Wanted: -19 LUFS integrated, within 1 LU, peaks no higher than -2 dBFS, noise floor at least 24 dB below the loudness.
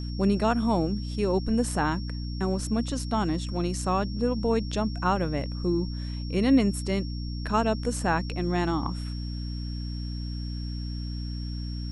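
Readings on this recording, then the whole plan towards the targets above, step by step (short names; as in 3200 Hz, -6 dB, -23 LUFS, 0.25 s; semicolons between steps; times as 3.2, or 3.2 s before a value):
hum 60 Hz; harmonics up to 300 Hz; hum level -30 dBFS; steady tone 5500 Hz; tone level -44 dBFS; loudness -28.0 LUFS; peak -11.5 dBFS; loudness target -19.0 LUFS
-> de-hum 60 Hz, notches 5; notch 5500 Hz, Q 30; gain +9 dB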